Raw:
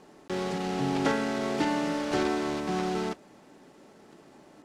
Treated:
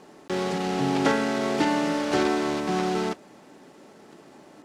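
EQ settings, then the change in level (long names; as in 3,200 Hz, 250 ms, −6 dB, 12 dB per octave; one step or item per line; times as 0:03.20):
low-shelf EQ 66 Hz −10.5 dB
+4.5 dB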